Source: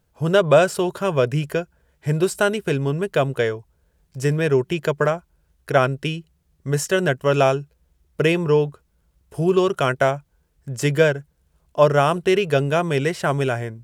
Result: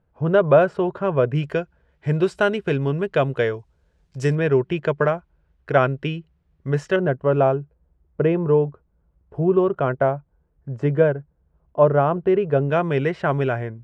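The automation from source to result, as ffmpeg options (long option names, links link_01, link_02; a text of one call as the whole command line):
ffmpeg -i in.wav -af "asetnsamples=nb_out_samples=441:pad=0,asendcmd='1.35 lowpass f 3200;3.54 lowpass f 5700;4.35 lowpass f 2500;6.96 lowpass f 1100;12.69 lowpass f 2200',lowpass=1600" out.wav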